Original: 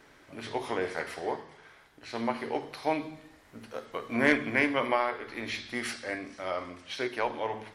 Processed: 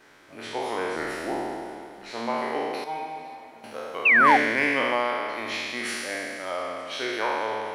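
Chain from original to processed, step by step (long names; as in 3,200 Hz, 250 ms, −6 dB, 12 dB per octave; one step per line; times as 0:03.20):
peak hold with a decay on every bin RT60 2.13 s
0:02.84–0:03.64: stiff-string resonator 80 Hz, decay 0.27 s, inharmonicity 0.008
feedback echo with a high-pass in the loop 508 ms, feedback 70%, level −21 dB
in parallel at −11 dB: soft clipping −24 dBFS, distortion −8 dB
on the sum: low-shelf EQ 170 Hz −9.5 dB
0:00.96–0:02.11: frequency shifter −96 Hz
0:04.05–0:04.37: sound drawn into the spectrogram fall 720–2,800 Hz −15 dBFS
level −1.5 dB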